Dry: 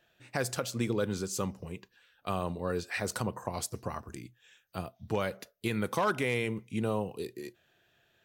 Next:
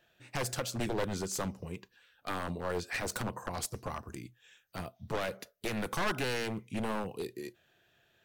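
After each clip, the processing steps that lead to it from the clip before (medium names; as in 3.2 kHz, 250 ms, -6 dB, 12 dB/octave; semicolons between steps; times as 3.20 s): one-sided wavefolder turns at -29.5 dBFS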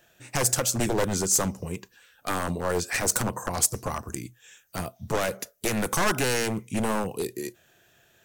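resonant high shelf 5.2 kHz +7 dB, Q 1.5; trim +8 dB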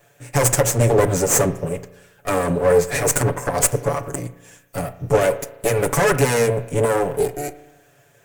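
comb filter that takes the minimum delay 7 ms; graphic EQ 125/500/2000/4000/8000 Hz +9/+11/+3/-6/+5 dB; spring tank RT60 1 s, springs 34 ms, chirp 25 ms, DRR 13.5 dB; trim +3.5 dB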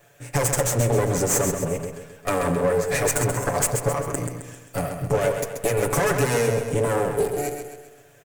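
compression 3:1, threshold -20 dBFS, peak gain reduction 7.5 dB; on a send: feedback delay 132 ms, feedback 47%, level -7 dB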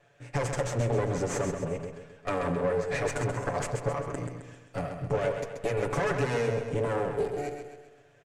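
low-pass 4.4 kHz 12 dB/octave; trim -6.5 dB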